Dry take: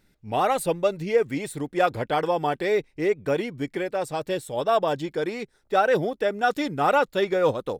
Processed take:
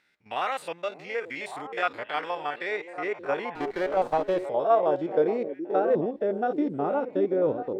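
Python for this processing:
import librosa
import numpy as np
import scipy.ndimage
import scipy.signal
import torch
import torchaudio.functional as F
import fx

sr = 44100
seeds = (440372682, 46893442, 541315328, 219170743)

p1 = fx.spec_steps(x, sr, hold_ms=50)
p2 = fx.rider(p1, sr, range_db=4, speed_s=0.5)
p3 = p2 + fx.echo_stepped(p2, sr, ms=577, hz=330.0, octaves=1.4, feedback_pct=70, wet_db=-6.0, dry=0)
p4 = fx.filter_sweep_bandpass(p3, sr, from_hz=2000.0, to_hz=320.0, start_s=2.38, end_s=6.11, q=1.1)
p5 = fx.running_max(p4, sr, window=5, at=(3.55, 4.46))
y = F.gain(torch.from_numpy(p5), 3.5).numpy()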